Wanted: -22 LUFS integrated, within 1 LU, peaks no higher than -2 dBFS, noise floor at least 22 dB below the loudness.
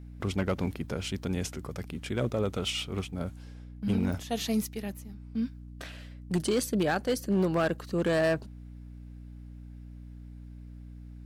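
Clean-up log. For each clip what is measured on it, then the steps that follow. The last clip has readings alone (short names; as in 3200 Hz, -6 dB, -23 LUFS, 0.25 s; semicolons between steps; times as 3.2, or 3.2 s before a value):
clipped 0.7%; flat tops at -20.5 dBFS; hum 60 Hz; harmonics up to 300 Hz; hum level -43 dBFS; loudness -31.0 LUFS; peak -20.5 dBFS; loudness target -22.0 LUFS
-> clip repair -20.5 dBFS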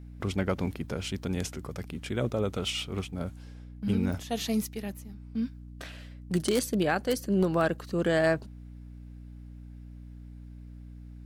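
clipped 0.0%; hum 60 Hz; harmonics up to 300 Hz; hum level -43 dBFS
-> notches 60/120/180/240/300 Hz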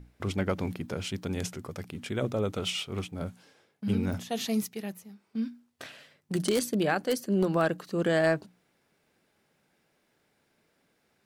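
hum none; loudness -31.0 LUFS; peak -11.5 dBFS; loudness target -22.0 LUFS
-> gain +9 dB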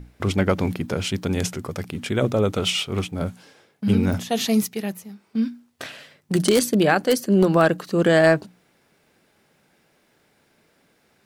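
loudness -22.0 LUFS; peak -2.5 dBFS; noise floor -63 dBFS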